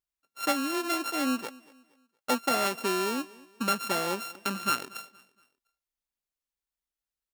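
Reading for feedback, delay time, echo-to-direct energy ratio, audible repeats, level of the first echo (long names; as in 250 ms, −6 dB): 37%, 234 ms, −21.5 dB, 2, −22.0 dB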